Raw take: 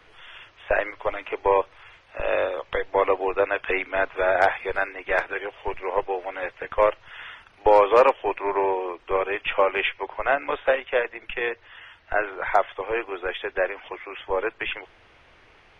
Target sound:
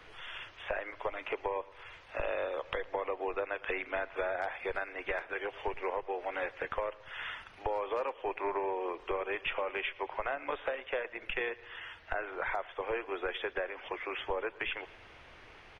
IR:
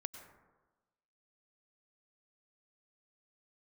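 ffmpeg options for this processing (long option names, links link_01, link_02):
-af "alimiter=limit=-17dB:level=0:latency=1:release=444,acompressor=threshold=-33dB:ratio=3,aecho=1:1:112|224|336|448|560:0.0841|0.0496|0.0293|0.0173|0.0102"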